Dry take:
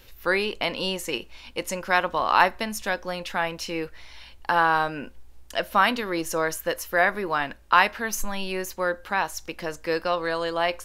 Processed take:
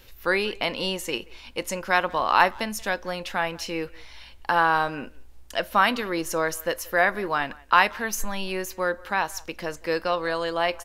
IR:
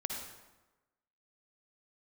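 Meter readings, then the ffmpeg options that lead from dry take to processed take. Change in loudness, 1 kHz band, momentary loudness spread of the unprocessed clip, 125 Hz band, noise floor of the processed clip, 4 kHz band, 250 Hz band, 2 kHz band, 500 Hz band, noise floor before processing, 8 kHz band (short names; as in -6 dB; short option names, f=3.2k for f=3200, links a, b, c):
0.0 dB, 0.0 dB, 12 LU, 0.0 dB, -47 dBFS, 0.0 dB, 0.0 dB, 0.0 dB, 0.0 dB, -48 dBFS, 0.0 dB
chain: -filter_complex "[0:a]asplit=2[a][b];[b]adelay=180,highpass=300,lowpass=3.4k,asoftclip=type=hard:threshold=-13dB,volume=-23dB[c];[a][c]amix=inputs=2:normalize=0"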